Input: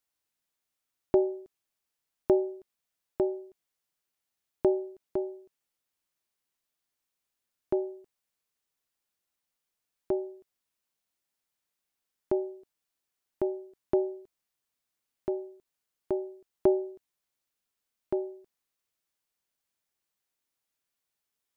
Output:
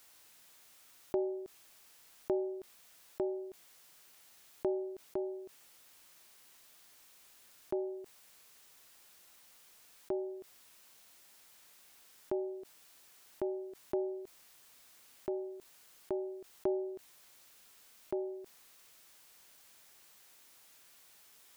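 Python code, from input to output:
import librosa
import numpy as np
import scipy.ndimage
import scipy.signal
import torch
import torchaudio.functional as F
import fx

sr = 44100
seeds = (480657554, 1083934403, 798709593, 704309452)

y = fx.low_shelf(x, sr, hz=360.0, db=-6.0)
y = fx.env_flatten(y, sr, amount_pct=50)
y = F.gain(torch.from_numpy(y), -8.0).numpy()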